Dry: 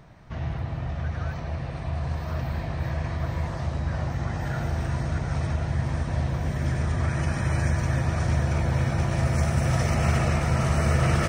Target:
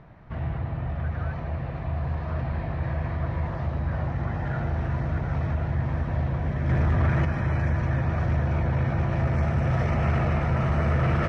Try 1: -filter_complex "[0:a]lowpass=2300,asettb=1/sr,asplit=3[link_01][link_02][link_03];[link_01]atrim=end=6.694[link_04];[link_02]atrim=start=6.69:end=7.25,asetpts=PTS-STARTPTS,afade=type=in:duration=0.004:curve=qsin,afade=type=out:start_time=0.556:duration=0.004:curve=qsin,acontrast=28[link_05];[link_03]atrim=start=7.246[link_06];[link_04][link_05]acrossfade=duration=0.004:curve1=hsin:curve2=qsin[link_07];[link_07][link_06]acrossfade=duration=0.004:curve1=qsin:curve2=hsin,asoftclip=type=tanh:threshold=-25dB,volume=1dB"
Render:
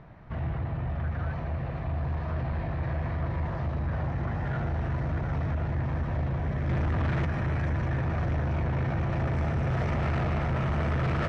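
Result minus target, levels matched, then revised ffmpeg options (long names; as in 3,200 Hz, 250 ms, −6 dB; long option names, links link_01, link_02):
soft clipping: distortion +9 dB
-filter_complex "[0:a]lowpass=2300,asettb=1/sr,asplit=3[link_01][link_02][link_03];[link_01]atrim=end=6.694[link_04];[link_02]atrim=start=6.69:end=7.25,asetpts=PTS-STARTPTS,afade=type=in:duration=0.004:curve=qsin,afade=type=out:start_time=0.556:duration=0.004:curve=qsin,acontrast=28[link_05];[link_03]atrim=start=7.246[link_06];[link_04][link_05]acrossfade=duration=0.004:curve1=hsin:curve2=qsin[link_07];[link_07][link_06]acrossfade=duration=0.004:curve1=qsin:curve2=hsin,asoftclip=type=tanh:threshold=-16.5dB,volume=1dB"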